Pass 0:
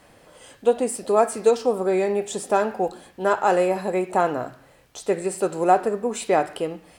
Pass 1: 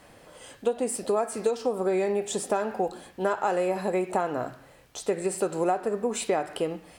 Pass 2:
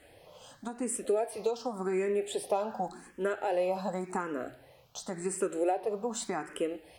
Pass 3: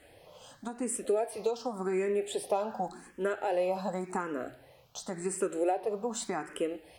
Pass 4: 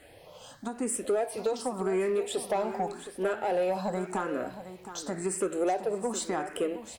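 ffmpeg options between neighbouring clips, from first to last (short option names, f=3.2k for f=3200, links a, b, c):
-af "acompressor=threshold=-22dB:ratio=6"
-filter_complex "[0:a]asplit=2[a][b];[b]afreqshift=0.89[c];[a][c]amix=inputs=2:normalize=1,volume=-2dB"
-af anull
-filter_complex "[0:a]asoftclip=type=tanh:threshold=-24dB,asplit=2[a][b];[b]aecho=0:1:717:0.251[c];[a][c]amix=inputs=2:normalize=0,volume=3.5dB"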